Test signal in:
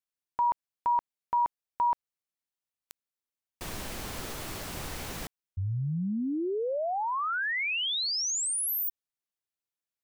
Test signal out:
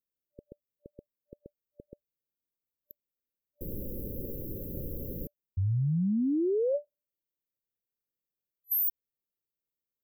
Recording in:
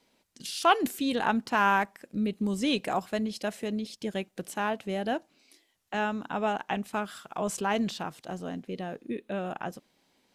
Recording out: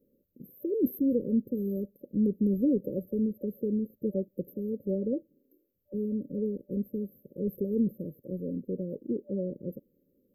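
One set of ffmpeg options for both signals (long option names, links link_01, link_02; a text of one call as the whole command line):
ffmpeg -i in.wav -af "afftfilt=real='re*(1-between(b*sr/4096,590,12000))':imag='im*(1-between(b*sr/4096,590,12000))':win_size=4096:overlap=0.75,volume=3dB" out.wav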